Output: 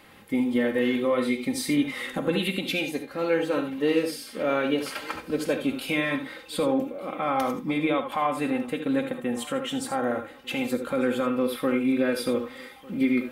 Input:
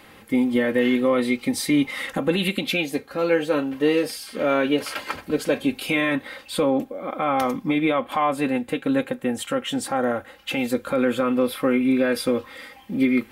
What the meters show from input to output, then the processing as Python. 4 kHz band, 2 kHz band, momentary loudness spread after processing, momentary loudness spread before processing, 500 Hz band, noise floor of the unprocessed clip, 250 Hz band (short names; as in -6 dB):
-3.5 dB, -4.0 dB, 6 LU, 7 LU, -3.5 dB, -48 dBFS, -3.5 dB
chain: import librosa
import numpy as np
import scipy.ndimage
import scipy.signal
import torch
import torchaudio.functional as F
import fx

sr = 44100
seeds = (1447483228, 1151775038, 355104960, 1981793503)

y = fx.echo_feedback(x, sr, ms=1199, feedback_pct=45, wet_db=-22.0)
y = fx.rev_gated(y, sr, seeds[0], gate_ms=100, shape='rising', drr_db=7.5)
y = y * librosa.db_to_amplitude(-4.5)